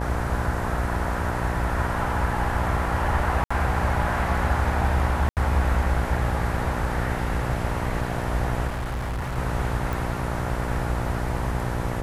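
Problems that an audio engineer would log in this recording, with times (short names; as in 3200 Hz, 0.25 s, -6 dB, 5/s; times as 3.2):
buzz 60 Hz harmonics 16 -29 dBFS
3.44–3.5 gap 65 ms
5.29–5.37 gap 78 ms
8.67–9.38 clipped -25.5 dBFS
9.93 pop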